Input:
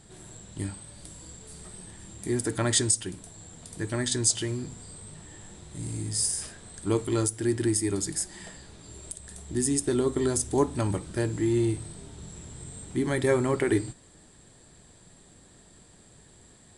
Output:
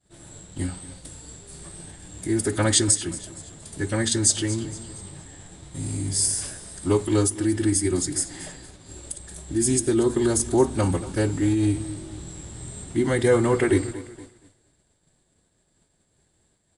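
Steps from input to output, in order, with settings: feedback echo 0.233 s, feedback 44%, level -16 dB; formant-preserving pitch shift -1.5 st; expander -43 dBFS; gain +5 dB

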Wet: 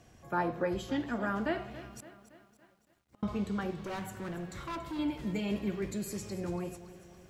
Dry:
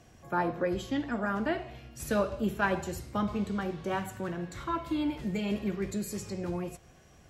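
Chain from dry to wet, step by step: 2–3.23 flipped gate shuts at -35 dBFS, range -40 dB; 3.76–4.99 hard clip -33.5 dBFS, distortion -14 dB; lo-fi delay 0.282 s, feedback 55%, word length 10-bit, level -15 dB; gain -2 dB

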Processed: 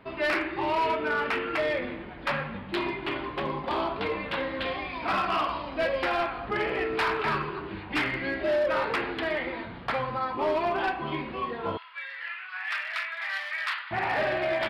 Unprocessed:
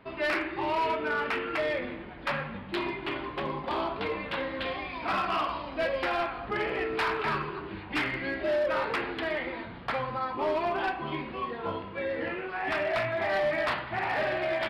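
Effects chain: 11.77–13.91 inverse Chebyshev high-pass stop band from 210 Hz, stop band 80 dB; gain +2 dB

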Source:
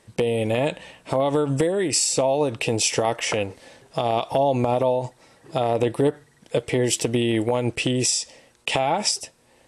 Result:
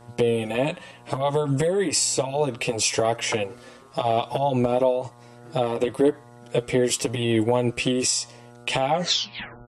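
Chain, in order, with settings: tape stop at the end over 0.78 s; buzz 120 Hz, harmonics 12, -48 dBFS -3 dB/oct; endless flanger 6.7 ms +0.96 Hz; gain +2 dB

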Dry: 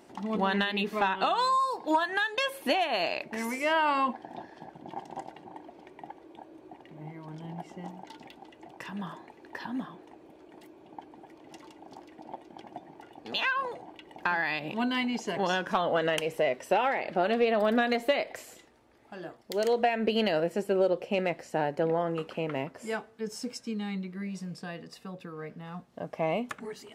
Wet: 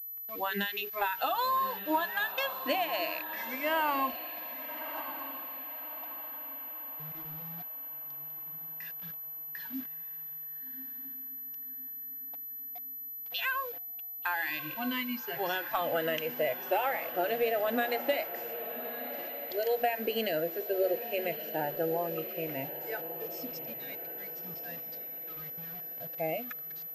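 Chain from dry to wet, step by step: de-hum 47.68 Hz, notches 9; spectral noise reduction 22 dB; bit-crush 8-bit; diffused feedback echo 1.193 s, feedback 45%, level -11 dB; pulse-width modulation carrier 12000 Hz; gain -3.5 dB

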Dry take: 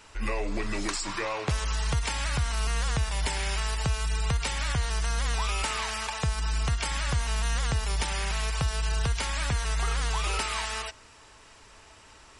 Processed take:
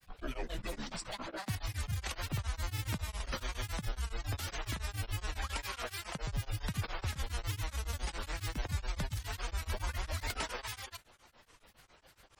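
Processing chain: grains, pitch spread up and down by 12 st; beating tremolo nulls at 7.2 Hz; gain -5.5 dB

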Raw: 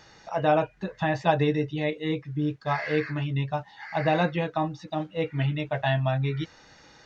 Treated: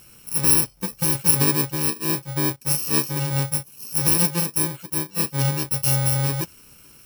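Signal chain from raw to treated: FFT order left unsorted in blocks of 64 samples; gain +4.5 dB

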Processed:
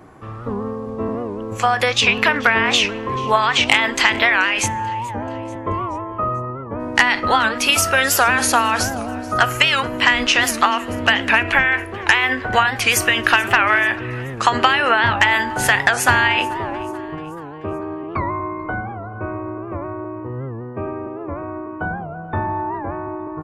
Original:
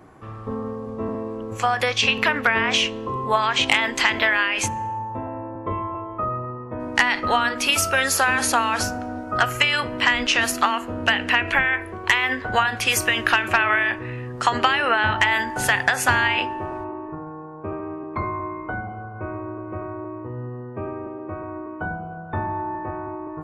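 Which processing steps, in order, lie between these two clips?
feedback echo 0.434 s, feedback 51%, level -21 dB; record warp 78 rpm, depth 160 cents; gain +4 dB

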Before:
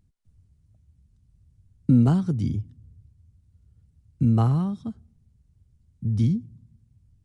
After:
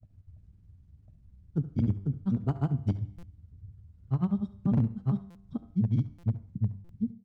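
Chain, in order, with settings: LPF 1800 Hz 6 dB/oct; in parallel at -2 dB: limiter -19.5 dBFS, peak gain reduction 10.5 dB; on the sum: compressor 12:1, threshold -20 dBFS, peak gain reduction 10 dB; grains 87 ms, grains 20/s, spray 0.746 s, pitch spread up and down by 0 st; resonator 98 Hz, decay 0.86 s, harmonics all, mix 50%; wavefolder -24 dBFS; echo 70 ms -16.5 dB; on a send at -19 dB: reverb RT60 0.50 s, pre-delay 63 ms; on the sum: stuck buffer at 3.18/5.3/6.18/6.84, samples 256, times 8; gain +6 dB

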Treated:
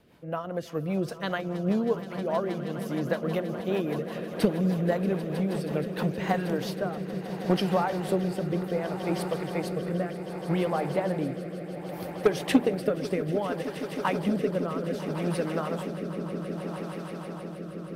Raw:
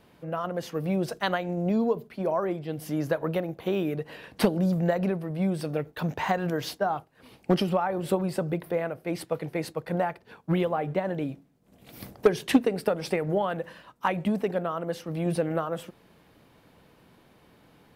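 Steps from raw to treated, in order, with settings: swelling echo 0.158 s, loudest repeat 8, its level -15.5 dB; rotary speaker horn 5 Hz, later 0.65 Hz, at 5.64

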